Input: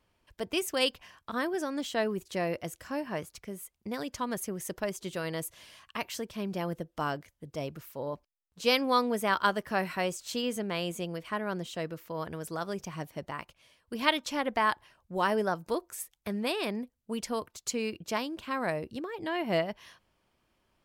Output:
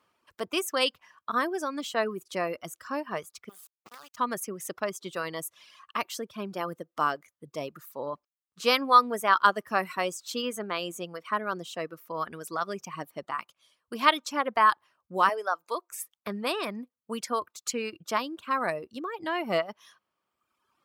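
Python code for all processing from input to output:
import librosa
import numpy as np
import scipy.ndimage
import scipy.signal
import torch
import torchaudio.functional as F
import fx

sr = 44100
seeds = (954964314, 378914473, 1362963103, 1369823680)

y = fx.chain(x, sr, fx.peak_eq(hz=320.0, db=-11.5, octaves=1.9),
    fx.level_steps(step_db=13),
    fx.quant_dither(seeds[0], bits=8, dither='none'), at=(3.49, 4.17))
y = fx.chain(y, sr, fx.highpass(hz=540.0, slope=12),
    fx.high_shelf(hz=9900.0, db=-7.5), at=(15.29, 15.91))
y = scipy.signal.sosfilt(scipy.signal.bessel(2, 220.0, 'highpass', norm='mag', fs=sr, output='sos'), y)
y = fx.dereverb_blind(y, sr, rt60_s=1.3)
y = fx.peak_eq(y, sr, hz=1200.0, db=10.0, octaves=0.41)
y = y * librosa.db_to_amplitude(2.0)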